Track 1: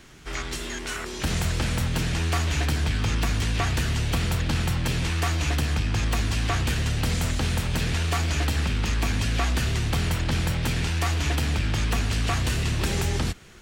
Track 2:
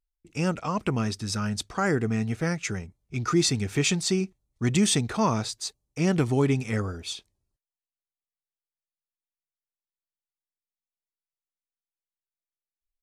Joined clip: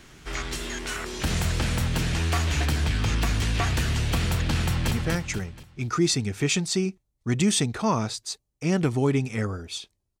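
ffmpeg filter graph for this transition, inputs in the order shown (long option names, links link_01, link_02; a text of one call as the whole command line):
ffmpeg -i cue0.wav -i cue1.wav -filter_complex "[0:a]apad=whole_dur=10.2,atrim=end=10.2,atrim=end=4.912[link_01];[1:a]atrim=start=2.258:end=7.55[link_02];[link_01][link_02]acrossfade=duration=0.004:curve1=hsin:curve2=hsin,asplit=2[link_03][link_04];[link_04]afade=type=in:start_time=4.63:duration=0.01,afade=type=out:start_time=4.91:duration=0.01,aecho=0:1:240|480|720|960|1200:0.668344|0.267338|0.106935|0.042774|0.0171096[link_05];[link_03][link_05]amix=inputs=2:normalize=0" out.wav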